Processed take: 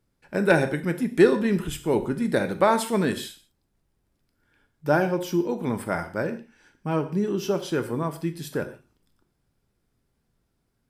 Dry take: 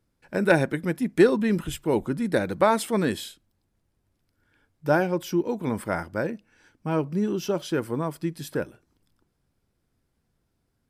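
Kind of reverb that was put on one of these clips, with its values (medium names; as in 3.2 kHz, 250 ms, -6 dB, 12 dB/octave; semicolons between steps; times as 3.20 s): gated-style reverb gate 190 ms falling, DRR 7.5 dB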